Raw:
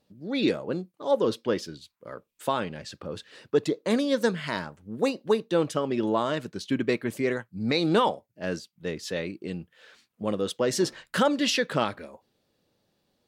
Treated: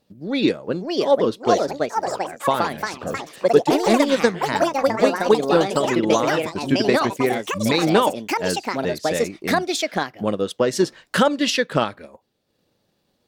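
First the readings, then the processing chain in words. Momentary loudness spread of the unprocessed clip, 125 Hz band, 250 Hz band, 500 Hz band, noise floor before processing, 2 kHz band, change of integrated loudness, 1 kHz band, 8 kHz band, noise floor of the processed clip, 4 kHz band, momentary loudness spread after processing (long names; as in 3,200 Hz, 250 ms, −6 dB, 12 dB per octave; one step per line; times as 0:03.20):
15 LU, +5.5 dB, +6.5 dB, +8.0 dB, −77 dBFS, +8.5 dB, +7.0 dB, +10.0 dB, +8.0 dB, −69 dBFS, +6.5 dB, 8 LU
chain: transient designer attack +4 dB, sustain −5 dB
delay with pitch and tempo change per echo 634 ms, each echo +4 semitones, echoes 3
level +4 dB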